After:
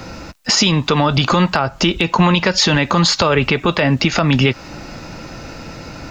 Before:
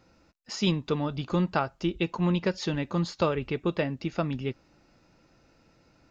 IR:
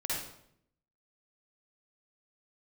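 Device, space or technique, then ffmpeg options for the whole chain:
mastering chain: -filter_complex "[0:a]equalizer=frequency=370:width_type=o:width=0.89:gain=-3,acrossover=split=91|630[link_01][link_02][link_03];[link_01]acompressor=threshold=-60dB:ratio=4[link_04];[link_02]acompressor=threshold=-40dB:ratio=4[link_05];[link_03]acompressor=threshold=-35dB:ratio=4[link_06];[link_04][link_05][link_06]amix=inputs=3:normalize=0,acompressor=threshold=-39dB:ratio=2.5,asoftclip=type=hard:threshold=-26dB,alimiter=level_in=33.5dB:limit=-1dB:release=50:level=0:latency=1,volume=-3dB"

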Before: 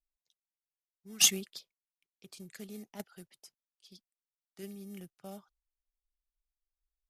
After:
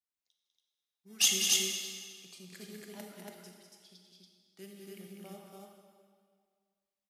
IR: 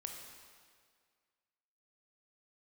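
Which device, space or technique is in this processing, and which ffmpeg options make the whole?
stadium PA: -filter_complex "[0:a]highpass=140,equalizer=frequency=3100:width_type=o:width=1.7:gain=3,aecho=1:1:198.3|282.8:0.447|0.794[link_01];[1:a]atrim=start_sample=2205[link_02];[link_01][link_02]afir=irnorm=-1:irlink=0"

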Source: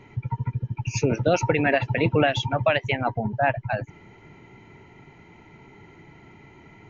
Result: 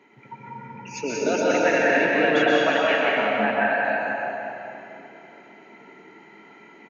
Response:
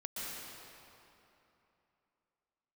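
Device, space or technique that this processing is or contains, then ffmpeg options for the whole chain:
stadium PA: -filter_complex "[0:a]highpass=frequency=230:width=0.5412,highpass=frequency=230:width=1.3066,equalizer=frequency=1600:width_type=o:width=0.4:gain=5,aecho=1:1:183.7|230.3:0.501|0.316[link_01];[1:a]atrim=start_sample=2205[link_02];[link_01][link_02]afir=irnorm=-1:irlink=0"

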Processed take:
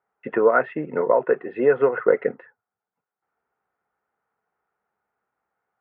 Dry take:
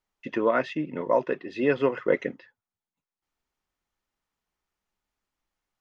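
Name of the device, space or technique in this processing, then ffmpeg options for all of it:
bass amplifier: -af "acompressor=threshold=-23dB:ratio=5,highpass=frequency=83:width=0.5412,highpass=frequency=83:width=1.3066,equalizer=frequency=90:width_type=q:width=4:gain=-9,equalizer=frequency=170:width_type=q:width=4:gain=-3,equalizer=frequency=290:width_type=q:width=4:gain=-6,equalizer=frequency=450:width_type=q:width=4:gain=9,equalizer=frequency=760:width_type=q:width=4:gain=9,equalizer=frequency=1400:width_type=q:width=4:gain=9,lowpass=frequency=2000:width=0.5412,lowpass=frequency=2000:width=1.3066,volume=4.5dB"

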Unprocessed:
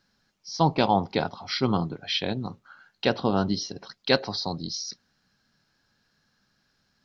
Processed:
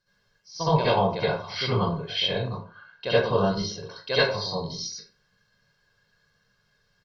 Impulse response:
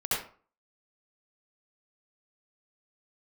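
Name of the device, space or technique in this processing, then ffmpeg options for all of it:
microphone above a desk: -filter_complex "[0:a]asettb=1/sr,asplit=3[link_01][link_02][link_03];[link_01]atrim=end=2.474[link_04];[link_02]atrim=start=2.47:end=3.1,asetpts=PTS-STARTPTS,afade=type=in:duration=0.004:curve=qsin,afade=type=out:start_time=0.626:duration=0.004:curve=qsin,lowpass=frequency=5500:width=0.5412,lowpass=frequency=5500:width=1.3066[link_05];[link_03]atrim=start=3.096[link_06];[link_04][link_05]acrossfade=duration=0.004:curve1=hsin:curve2=qsin[link_07];[link_07][link_06]acrossfade=duration=0.004:curve1=qsin:curve2=hsin,aecho=1:1:1.9:0.68[link_08];[1:a]atrim=start_sample=2205[link_09];[link_08][link_09]afir=irnorm=-1:irlink=0,volume=-8dB"

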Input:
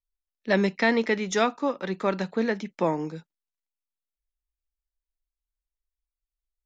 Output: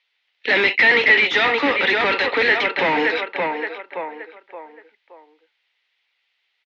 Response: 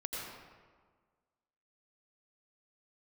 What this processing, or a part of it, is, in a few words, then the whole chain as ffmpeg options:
overdrive pedal into a guitar cabinet: -filter_complex "[0:a]highpass=frequency=490:width=0.5412,highpass=frequency=490:width=1.3066,highshelf=frequency=2200:width_type=q:width=1.5:gain=6.5,asplit=2[link_01][link_02];[link_02]adelay=572,lowpass=frequency=2100:poles=1,volume=-12dB,asplit=2[link_03][link_04];[link_04]adelay=572,lowpass=frequency=2100:poles=1,volume=0.36,asplit=2[link_05][link_06];[link_06]adelay=572,lowpass=frequency=2100:poles=1,volume=0.36,asplit=2[link_07][link_08];[link_08]adelay=572,lowpass=frequency=2100:poles=1,volume=0.36[link_09];[link_01][link_03][link_05][link_07][link_09]amix=inputs=5:normalize=0,asplit=2[link_10][link_11];[link_11]highpass=frequency=720:poles=1,volume=34dB,asoftclip=type=tanh:threshold=-11dB[link_12];[link_10][link_12]amix=inputs=2:normalize=0,lowpass=frequency=3100:poles=1,volume=-6dB,highpass=110,equalizer=frequency=140:width_type=q:width=4:gain=-9,equalizer=frequency=280:width_type=q:width=4:gain=8,equalizer=frequency=620:width_type=q:width=4:gain=-8,equalizer=frequency=1100:width_type=q:width=4:gain=-6,equalizer=frequency=2000:width_type=q:width=4:gain=9,lowpass=frequency=3700:width=0.5412,lowpass=frequency=3700:width=1.3066,volume=1.5dB"

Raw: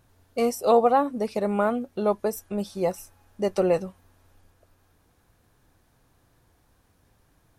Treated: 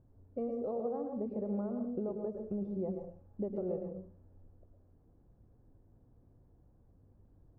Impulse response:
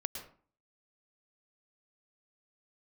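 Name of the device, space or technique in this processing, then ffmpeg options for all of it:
television next door: -filter_complex "[0:a]acompressor=threshold=-32dB:ratio=4,lowpass=440[link_01];[1:a]atrim=start_sample=2205[link_02];[link_01][link_02]afir=irnorm=-1:irlink=0"

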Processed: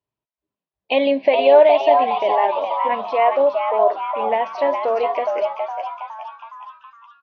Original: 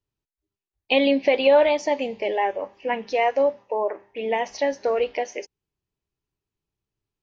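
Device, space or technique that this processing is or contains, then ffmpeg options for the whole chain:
frequency-shifting delay pedal into a guitar cabinet: -filter_complex "[0:a]asplit=8[link_01][link_02][link_03][link_04][link_05][link_06][link_07][link_08];[link_02]adelay=415,afreqshift=140,volume=-6dB[link_09];[link_03]adelay=830,afreqshift=280,volume=-11.5dB[link_10];[link_04]adelay=1245,afreqshift=420,volume=-17dB[link_11];[link_05]adelay=1660,afreqshift=560,volume=-22.5dB[link_12];[link_06]adelay=2075,afreqshift=700,volume=-28.1dB[link_13];[link_07]adelay=2490,afreqshift=840,volume=-33.6dB[link_14];[link_08]adelay=2905,afreqshift=980,volume=-39.1dB[link_15];[link_01][link_09][link_10][link_11][link_12][link_13][link_14][link_15]amix=inputs=8:normalize=0,highpass=78,equalizer=frequency=83:width_type=q:width=4:gain=-7,equalizer=frequency=640:width_type=q:width=4:gain=10,equalizer=frequency=1000:width_type=q:width=4:gain=8,lowpass=frequency=4100:width=0.5412,lowpass=frequency=4100:width=1.3066,volume=-1.5dB"

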